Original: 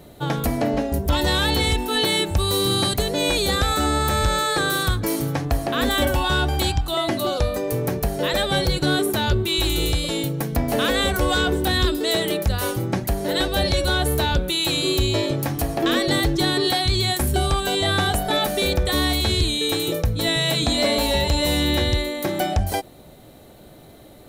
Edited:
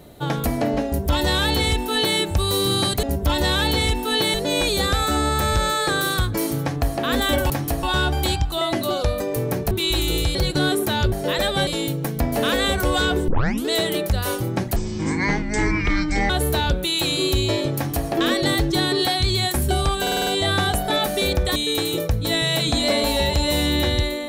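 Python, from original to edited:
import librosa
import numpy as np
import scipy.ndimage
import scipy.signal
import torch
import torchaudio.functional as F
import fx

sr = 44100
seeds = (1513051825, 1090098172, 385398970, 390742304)

y = fx.edit(x, sr, fx.duplicate(start_s=0.86, length_s=1.31, to_s=3.03),
    fx.swap(start_s=8.07, length_s=0.55, other_s=9.39, other_length_s=0.64),
    fx.tape_start(start_s=11.64, length_s=0.39),
    fx.speed_span(start_s=13.12, length_s=0.83, speed=0.54),
    fx.duplicate(start_s=15.41, length_s=0.33, to_s=6.19),
    fx.stutter(start_s=17.67, slice_s=0.05, count=6),
    fx.cut(start_s=18.96, length_s=0.54), tone=tone)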